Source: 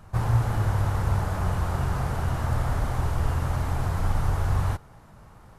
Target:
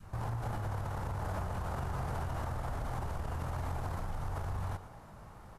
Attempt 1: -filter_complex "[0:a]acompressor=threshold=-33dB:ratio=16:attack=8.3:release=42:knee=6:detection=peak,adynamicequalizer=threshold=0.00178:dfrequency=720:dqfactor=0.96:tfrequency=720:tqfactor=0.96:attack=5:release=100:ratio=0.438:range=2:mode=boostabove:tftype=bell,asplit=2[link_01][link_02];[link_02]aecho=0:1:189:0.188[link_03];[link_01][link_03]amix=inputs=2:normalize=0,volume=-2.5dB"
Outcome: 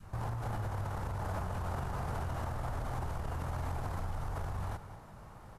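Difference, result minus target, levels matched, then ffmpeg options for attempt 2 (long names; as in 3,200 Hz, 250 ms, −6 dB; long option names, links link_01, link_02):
echo 72 ms late
-filter_complex "[0:a]acompressor=threshold=-33dB:ratio=16:attack=8.3:release=42:knee=6:detection=peak,adynamicequalizer=threshold=0.00178:dfrequency=720:dqfactor=0.96:tfrequency=720:tqfactor=0.96:attack=5:release=100:ratio=0.438:range=2:mode=boostabove:tftype=bell,asplit=2[link_01][link_02];[link_02]aecho=0:1:117:0.188[link_03];[link_01][link_03]amix=inputs=2:normalize=0,volume=-2.5dB"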